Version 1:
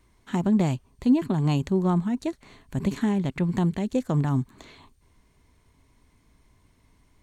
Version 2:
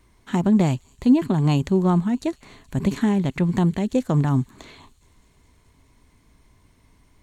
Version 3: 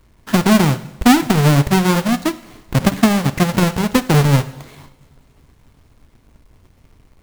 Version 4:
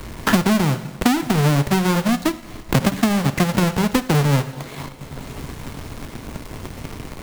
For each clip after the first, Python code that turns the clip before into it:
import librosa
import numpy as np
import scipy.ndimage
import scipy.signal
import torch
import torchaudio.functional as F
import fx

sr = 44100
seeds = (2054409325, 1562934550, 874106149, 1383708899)

y1 = fx.echo_wet_highpass(x, sr, ms=212, feedback_pct=78, hz=5300.0, wet_db=-17.0)
y1 = y1 * 10.0 ** (4.0 / 20.0)
y2 = fx.halfwave_hold(y1, sr)
y2 = fx.rev_double_slope(y2, sr, seeds[0], early_s=0.85, late_s=3.3, knee_db=-25, drr_db=8.5)
y2 = fx.transient(y2, sr, attack_db=5, sustain_db=-3)
y3 = fx.leveller(y2, sr, passes=1)
y3 = fx.band_squash(y3, sr, depth_pct=100)
y3 = y3 * 10.0 ** (-6.5 / 20.0)